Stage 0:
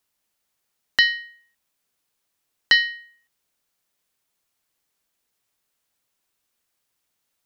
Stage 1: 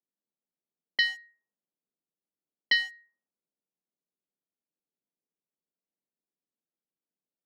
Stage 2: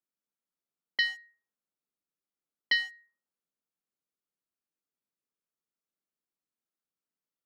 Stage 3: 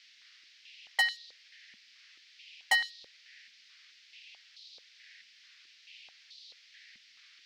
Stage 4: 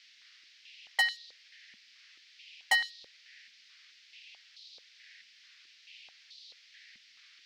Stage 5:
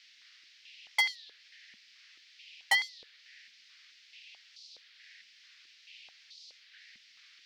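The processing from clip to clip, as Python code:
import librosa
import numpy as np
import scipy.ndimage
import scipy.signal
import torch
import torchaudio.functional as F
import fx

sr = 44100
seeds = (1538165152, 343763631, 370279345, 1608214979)

y1 = fx.wiener(x, sr, points=15)
y1 = scipy.signal.sosfilt(scipy.signal.butter(8, 150.0, 'highpass', fs=sr, output='sos'), y1)
y1 = fx.env_lowpass(y1, sr, base_hz=450.0, full_db=-19.0)
y1 = y1 * librosa.db_to_amplitude(-7.5)
y2 = fx.peak_eq(y1, sr, hz=1300.0, db=7.0, octaves=0.42)
y2 = y2 * librosa.db_to_amplitude(-3.0)
y3 = fx.dmg_noise_band(y2, sr, seeds[0], low_hz=1800.0, high_hz=5300.0, level_db=-60.0)
y3 = 10.0 ** (-19.5 / 20.0) * (np.abs((y3 / 10.0 ** (-19.5 / 20.0) + 3.0) % 4.0 - 2.0) - 1.0)
y3 = fx.filter_held_highpass(y3, sr, hz=4.6, low_hz=220.0, high_hz=4000.0)
y4 = y3
y5 = fx.record_warp(y4, sr, rpm=33.33, depth_cents=160.0)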